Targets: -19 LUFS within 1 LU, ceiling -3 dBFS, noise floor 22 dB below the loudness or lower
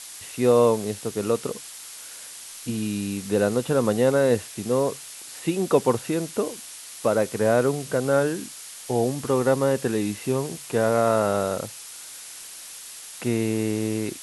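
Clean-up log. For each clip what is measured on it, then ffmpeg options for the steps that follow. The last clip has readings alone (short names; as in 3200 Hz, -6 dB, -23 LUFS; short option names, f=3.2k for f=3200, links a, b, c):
noise floor -41 dBFS; noise floor target -46 dBFS; loudness -24.0 LUFS; peak -5.0 dBFS; loudness target -19.0 LUFS
-> -af "afftdn=nr=6:nf=-41"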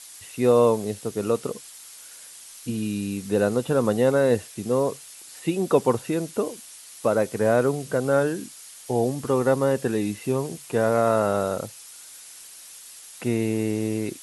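noise floor -45 dBFS; noise floor target -46 dBFS
-> -af "afftdn=nr=6:nf=-45"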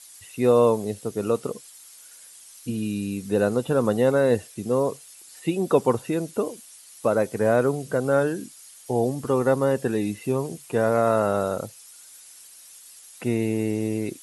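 noise floor -48 dBFS; loudness -24.0 LUFS; peak -5.0 dBFS; loudness target -19.0 LUFS
-> -af "volume=5dB,alimiter=limit=-3dB:level=0:latency=1"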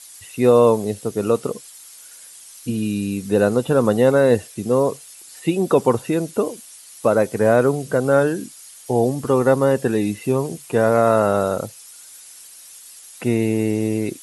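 loudness -19.0 LUFS; peak -3.0 dBFS; noise floor -43 dBFS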